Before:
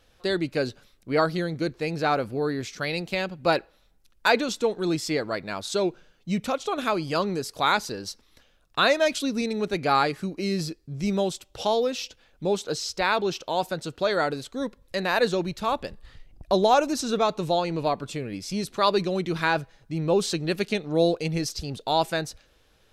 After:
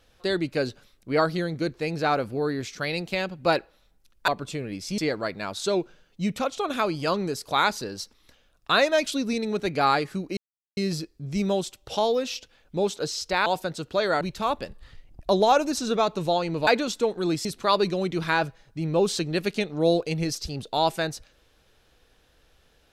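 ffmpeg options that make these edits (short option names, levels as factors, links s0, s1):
-filter_complex "[0:a]asplit=8[s0][s1][s2][s3][s4][s5][s6][s7];[s0]atrim=end=4.282[s8];[s1]atrim=start=17.888:end=18.592[s9];[s2]atrim=start=5.058:end=10.45,asetpts=PTS-STARTPTS,afade=t=out:st=5.388:d=0.004:c=hsin,apad=pad_dur=0.4[s10];[s3]atrim=start=10.45:end=13.142,asetpts=PTS-STARTPTS,afade=t=in:d=0.004:c=hsin[s11];[s4]atrim=start=13.528:end=14.282[s12];[s5]atrim=start=15.428:end=17.892[s13];[s6]atrim=start=4.278:end=5.062[s14];[s7]atrim=start=18.588[s15];[s8][s9]acrossfade=d=0.004:c1=hsin:c2=hsin[s16];[s10][s11]concat=n=2:v=0:a=1[s17];[s16][s17]acrossfade=d=0.004:c1=hsin:c2=hsin[s18];[s18][s12]acrossfade=d=0.004:c1=hsin:c2=hsin[s19];[s19][s13]acrossfade=d=0.004:c1=hsin:c2=hsin[s20];[s20][s14]acrossfade=d=0.004:c1=hsin:c2=hsin[s21];[s21][s15]acrossfade=d=0.004:c1=hsin:c2=hsin"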